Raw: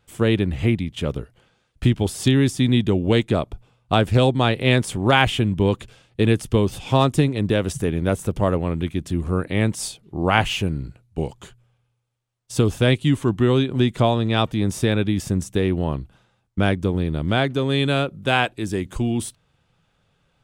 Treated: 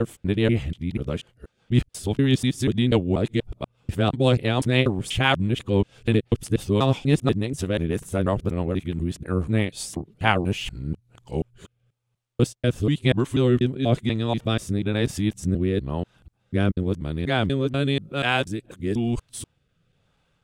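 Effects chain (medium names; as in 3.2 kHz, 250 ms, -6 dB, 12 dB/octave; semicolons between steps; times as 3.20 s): time reversed locally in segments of 243 ms; rotary cabinet horn 6 Hz, later 1 Hz, at 10.21 s; trim -1 dB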